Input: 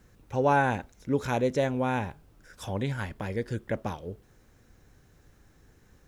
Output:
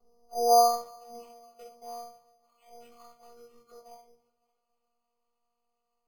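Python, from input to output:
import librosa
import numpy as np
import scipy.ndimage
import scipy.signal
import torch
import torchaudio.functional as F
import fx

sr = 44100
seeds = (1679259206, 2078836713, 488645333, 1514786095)

p1 = fx.partial_stretch(x, sr, pct=84)
p2 = fx.filter_sweep_bandpass(p1, sr, from_hz=460.0, to_hz=4200.0, start_s=0.06, end_s=1.3, q=1.3)
p3 = fx.level_steps(p2, sr, step_db=22, at=(1.26, 1.82))
p4 = fx.robotise(p3, sr, hz=237.0)
p5 = fx.fixed_phaser(p4, sr, hz=700.0, stages=4)
p6 = p5 + fx.echo_tape(p5, sr, ms=282, feedback_pct=60, wet_db=-22.5, lp_hz=3800.0, drive_db=20.0, wow_cents=16, dry=0)
p7 = fx.room_shoebox(p6, sr, seeds[0], volume_m3=270.0, walls='furnished', distance_m=3.4)
y = np.repeat(scipy.signal.resample_poly(p7, 1, 8), 8)[:len(p7)]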